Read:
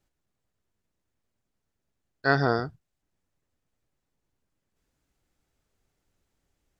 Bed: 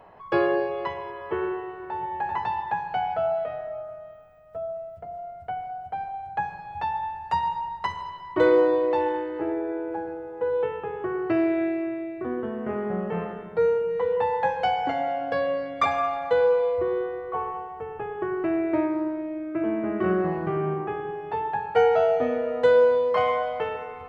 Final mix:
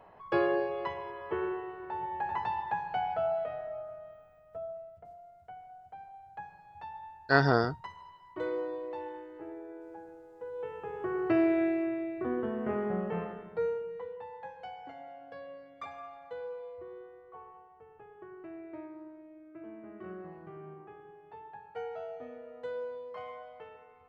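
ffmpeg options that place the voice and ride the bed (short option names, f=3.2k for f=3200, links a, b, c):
-filter_complex "[0:a]adelay=5050,volume=-1dB[a];[1:a]volume=7.5dB,afade=t=out:st=4.35:d=0.88:silence=0.298538,afade=t=in:st=10.54:d=0.75:silence=0.223872,afade=t=out:st=12.71:d=1.47:silence=0.133352[b];[a][b]amix=inputs=2:normalize=0"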